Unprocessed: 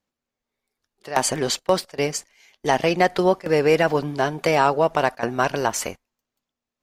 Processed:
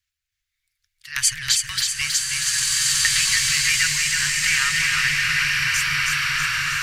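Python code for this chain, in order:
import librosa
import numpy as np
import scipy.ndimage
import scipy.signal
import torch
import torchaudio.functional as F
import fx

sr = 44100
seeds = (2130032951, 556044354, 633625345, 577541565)

p1 = fx.fade_out_tail(x, sr, length_s=1.91)
p2 = scipy.signal.sosfilt(scipy.signal.cheby2(4, 50, [210.0, 810.0], 'bandstop', fs=sr, output='sos'), p1)
p3 = p2 + fx.echo_feedback(p2, sr, ms=320, feedback_pct=57, wet_db=-4.0, dry=0)
p4 = fx.buffer_glitch(p3, sr, at_s=(2.49,), block=2048, repeats=11)
p5 = fx.rev_bloom(p4, sr, seeds[0], attack_ms=1790, drr_db=-3.5)
y = p5 * 10.0 ** (5.5 / 20.0)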